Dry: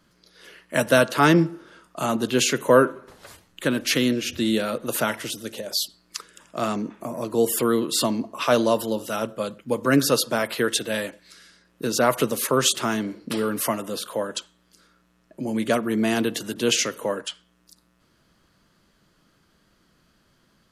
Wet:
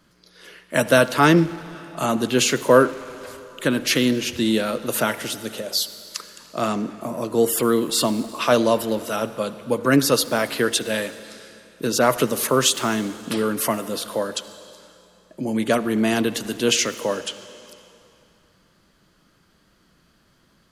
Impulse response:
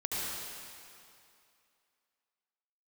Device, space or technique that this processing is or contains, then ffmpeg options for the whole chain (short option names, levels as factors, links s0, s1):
saturated reverb return: -filter_complex "[0:a]asplit=2[s0][s1];[1:a]atrim=start_sample=2205[s2];[s1][s2]afir=irnorm=-1:irlink=0,asoftclip=type=tanh:threshold=0.112,volume=0.158[s3];[s0][s3]amix=inputs=2:normalize=0,volume=1.19"